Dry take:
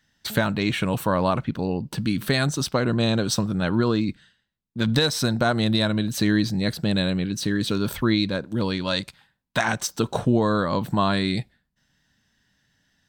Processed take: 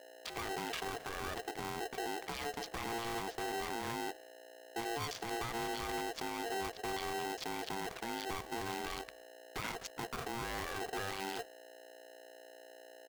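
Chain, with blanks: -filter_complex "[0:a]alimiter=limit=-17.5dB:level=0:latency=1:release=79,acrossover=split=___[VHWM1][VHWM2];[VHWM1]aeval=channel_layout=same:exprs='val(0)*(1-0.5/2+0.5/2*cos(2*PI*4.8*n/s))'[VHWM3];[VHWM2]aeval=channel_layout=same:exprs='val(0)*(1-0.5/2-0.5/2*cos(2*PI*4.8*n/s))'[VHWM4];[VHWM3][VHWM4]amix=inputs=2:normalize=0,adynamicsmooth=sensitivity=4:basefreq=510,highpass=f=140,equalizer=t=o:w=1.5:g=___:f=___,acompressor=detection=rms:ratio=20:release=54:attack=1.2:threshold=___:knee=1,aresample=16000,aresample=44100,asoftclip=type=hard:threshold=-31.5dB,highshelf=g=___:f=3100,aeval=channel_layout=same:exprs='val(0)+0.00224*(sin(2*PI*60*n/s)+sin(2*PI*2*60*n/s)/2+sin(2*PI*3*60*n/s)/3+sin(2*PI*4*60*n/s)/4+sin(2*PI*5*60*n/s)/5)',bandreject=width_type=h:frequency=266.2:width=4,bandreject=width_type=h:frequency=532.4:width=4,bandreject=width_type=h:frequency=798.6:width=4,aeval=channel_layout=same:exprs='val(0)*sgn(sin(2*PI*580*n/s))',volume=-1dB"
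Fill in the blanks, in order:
1400, -4.5, 330, -33dB, 3.5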